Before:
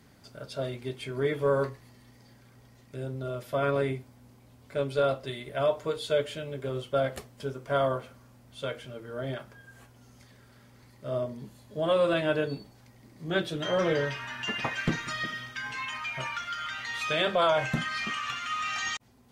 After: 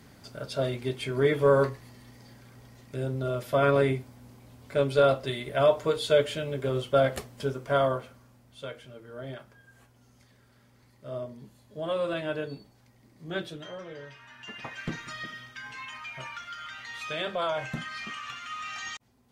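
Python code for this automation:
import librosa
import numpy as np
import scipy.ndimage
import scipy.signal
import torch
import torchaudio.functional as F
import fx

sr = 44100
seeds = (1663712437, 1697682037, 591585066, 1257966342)

y = fx.gain(x, sr, db=fx.line((7.46, 4.5), (8.68, -5.0), (13.47, -5.0), (13.85, -17.0), (14.96, -5.5)))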